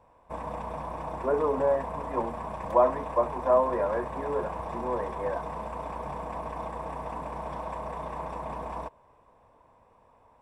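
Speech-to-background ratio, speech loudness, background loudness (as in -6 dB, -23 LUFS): 8.0 dB, -28.5 LUFS, -36.5 LUFS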